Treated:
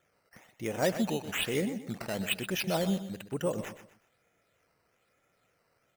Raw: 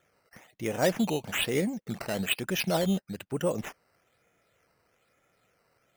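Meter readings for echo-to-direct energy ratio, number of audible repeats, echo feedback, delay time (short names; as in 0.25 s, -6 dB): -11.5 dB, 3, 33%, 0.124 s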